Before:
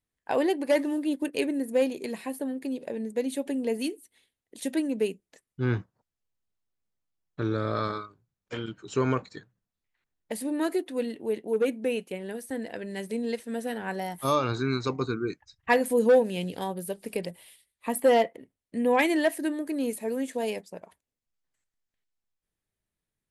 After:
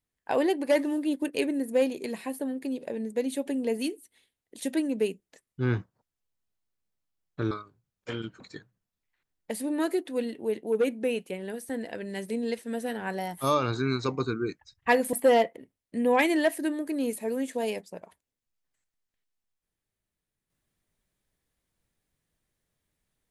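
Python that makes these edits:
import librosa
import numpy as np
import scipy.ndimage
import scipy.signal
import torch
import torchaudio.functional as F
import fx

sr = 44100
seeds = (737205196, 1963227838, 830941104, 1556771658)

y = fx.edit(x, sr, fx.cut(start_s=7.51, length_s=0.44),
    fx.cut(start_s=8.84, length_s=0.37),
    fx.cut(start_s=15.94, length_s=1.99), tone=tone)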